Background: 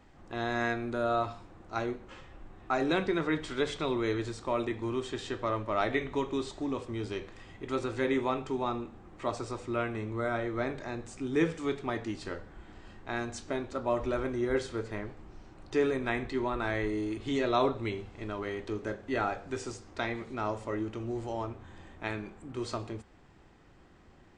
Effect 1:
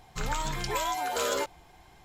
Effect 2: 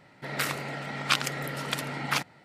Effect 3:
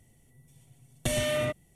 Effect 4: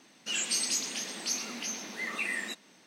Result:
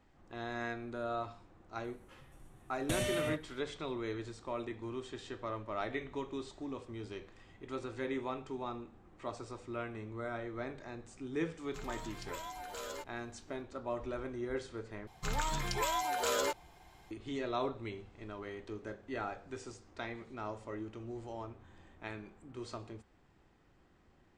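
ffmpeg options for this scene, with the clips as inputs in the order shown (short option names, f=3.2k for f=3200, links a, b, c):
-filter_complex "[1:a]asplit=2[a][b];[0:a]volume=-8.5dB,asplit=2[c][d];[c]atrim=end=15.074[e];[b]atrim=end=2.04,asetpts=PTS-STARTPTS,volume=-3.5dB[f];[d]atrim=start=17.106[g];[3:a]atrim=end=1.75,asetpts=PTS-STARTPTS,volume=-7dB,afade=t=in:d=0.004:c=hsin,afade=t=out:st=1.746:d=0.004:c=hsin,adelay=1840[h];[a]atrim=end=2.04,asetpts=PTS-STARTPTS,volume=-14.5dB,afade=t=in:d=0.004:c=hsin,afade=t=out:st=2.036:d=0.004:c=hsin,adelay=11580[i];[e][f]acrossfade=d=0.004:c1=hsin:c2=hsin[j];[j][g]acrossfade=d=0.004:c1=hsin:c2=hsin[k];[k][h][i]amix=inputs=3:normalize=0"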